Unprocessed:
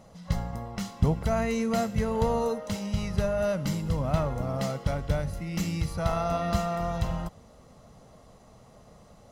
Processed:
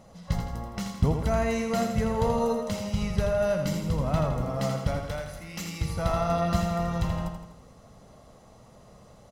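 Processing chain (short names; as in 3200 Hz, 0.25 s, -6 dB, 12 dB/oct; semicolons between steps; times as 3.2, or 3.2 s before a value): 4.99–5.81 low shelf 430 Hz -11.5 dB; feedback echo 82 ms, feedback 51%, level -6.5 dB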